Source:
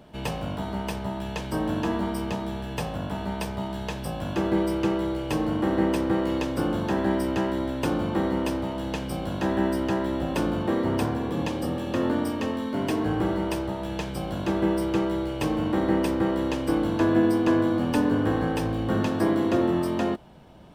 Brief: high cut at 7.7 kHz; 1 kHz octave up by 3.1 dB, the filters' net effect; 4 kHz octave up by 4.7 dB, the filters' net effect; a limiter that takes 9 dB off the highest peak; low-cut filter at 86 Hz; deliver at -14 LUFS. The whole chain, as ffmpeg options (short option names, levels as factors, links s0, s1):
-af "highpass=86,lowpass=7700,equalizer=f=1000:t=o:g=3.5,equalizer=f=4000:t=o:g=6.5,volume=5.01,alimiter=limit=0.631:level=0:latency=1"